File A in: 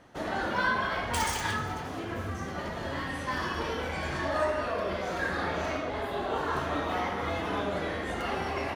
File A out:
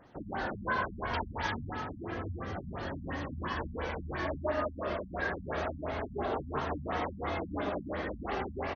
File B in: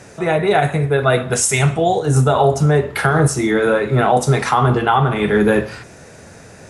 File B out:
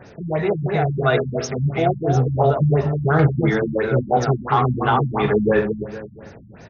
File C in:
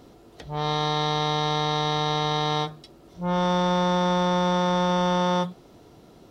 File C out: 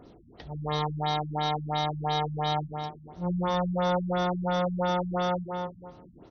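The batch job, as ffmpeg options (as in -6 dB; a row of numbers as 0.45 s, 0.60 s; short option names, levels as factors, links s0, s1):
-filter_complex "[0:a]aphaser=in_gain=1:out_gain=1:delay=3.9:decay=0.23:speed=0.32:type=triangular,asplit=2[s0][s1];[s1]adelay=233,lowpass=f=2200:p=1,volume=0.562,asplit=2[s2][s3];[s3]adelay=233,lowpass=f=2200:p=1,volume=0.29,asplit=2[s4][s5];[s5]adelay=233,lowpass=f=2200:p=1,volume=0.29,asplit=2[s6][s7];[s7]adelay=233,lowpass=f=2200:p=1,volume=0.29[s8];[s0][s2][s4][s6][s8]amix=inputs=5:normalize=0,afftfilt=real='re*lt(b*sr/1024,240*pow(6800/240,0.5+0.5*sin(2*PI*2.9*pts/sr)))':imag='im*lt(b*sr/1024,240*pow(6800/240,0.5+0.5*sin(2*PI*2.9*pts/sr)))':win_size=1024:overlap=0.75,volume=0.668"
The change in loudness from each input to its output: -4.5 LU, -4.0 LU, -5.5 LU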